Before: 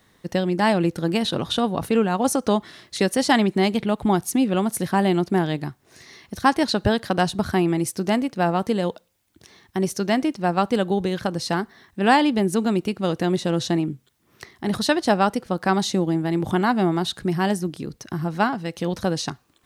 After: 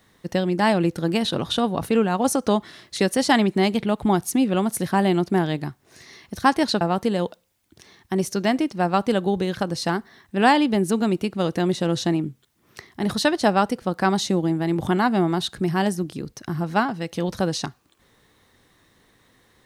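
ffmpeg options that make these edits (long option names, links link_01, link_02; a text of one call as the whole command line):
ffmpeg -i in.wav -filter_complex "[0:a]asplit=2[link_01][link_02];[link_01]atrim=end=6.812[link_03];[link_02]atrim=start=8.448[link_04];[link_03][link_04]acrossfade=duration=0.004:curve1=hsin:curve2=hsin" out.wav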